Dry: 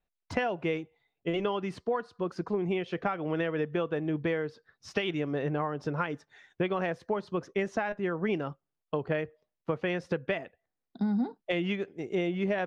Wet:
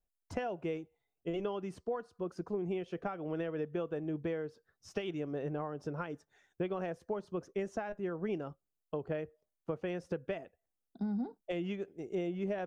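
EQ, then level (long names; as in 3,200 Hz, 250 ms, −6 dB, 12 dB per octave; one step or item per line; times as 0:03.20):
octave-band graphic EQ 125/250/500/1,000/2,000/4,000 Hz −7/−5/−3/−7/−10/−11 dB
0.0 dB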